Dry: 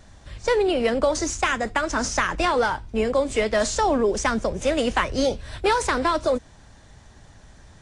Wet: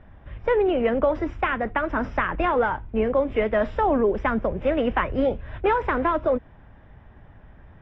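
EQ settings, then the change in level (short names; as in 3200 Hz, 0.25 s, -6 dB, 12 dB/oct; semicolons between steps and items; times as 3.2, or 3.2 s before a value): polynomial smoothing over 25 samples; air absorption 360 m; +1.0 dB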